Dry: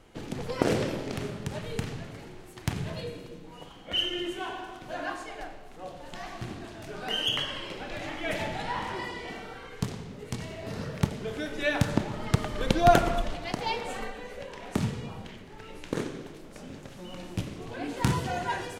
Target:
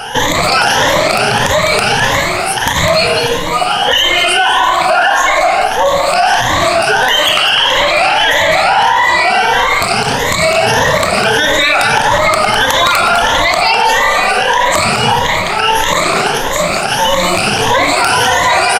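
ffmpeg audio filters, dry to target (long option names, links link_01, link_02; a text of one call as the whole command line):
ffmpeg -i in.wav -af "afftfilt=real='re*pow(10,20/40*sin(2*PI*(1.1*log(max(b,1)*sr/1024/100)/log(2)-(1.6)*(pts-256)/sr)))':imag='im*pow(10,20/40*sin(2*PI*(1.1*log(max(b,1)*sr/1024/100)/log(2)-(1.6)*(pts-256)/sr)))':win_size=1024:overlap=0.75,afftfilt=real='re*lt(hypot(re,im),0.447)':imag='im*lt(hypot(re,im),0.447)':win_size=1024:overlap=0.75,lowshelf=frequency=510:width_type=q:width=1.5:gain=-13,acompressor=threshold=-34dB:ratio=2.5,aecho=1:1:204:0.316,aeval=exprs='0.0631*(abs(mod(val(0)/0.0631+3,4)-2)-1)':channel_layout=same,aresample=32000,aresample=44100,alimiter=level_in=33.5dB:limit=-1dB:release=50:level=0:latency=1,volume=-1dB" out.wav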